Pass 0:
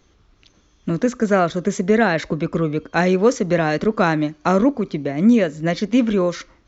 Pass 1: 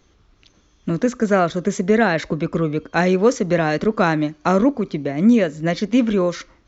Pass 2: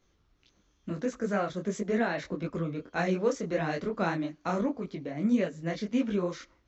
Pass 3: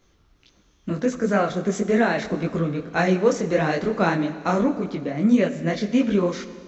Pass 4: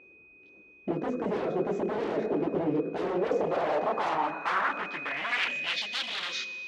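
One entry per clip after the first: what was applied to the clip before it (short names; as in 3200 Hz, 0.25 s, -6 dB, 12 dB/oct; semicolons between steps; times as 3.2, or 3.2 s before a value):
nothing audible
detuned doubles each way 57 cents; gain -8.5 dB
Schroeder reverb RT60 2.2 s, combs from 28 ms, DRR 12 dB; gain +8.5 dB
whine 2500 Hz -38 dBFS; wavefolder -23.5 dBFS; band-pass sweep 400 Hz -> 3600 Hz, 3.07–5.96; gain +8 dB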